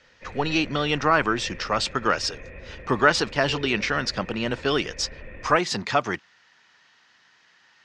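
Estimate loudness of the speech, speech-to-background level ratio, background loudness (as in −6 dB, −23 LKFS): −24.0 LKFS, 18.0 dB, −42.0 LKFS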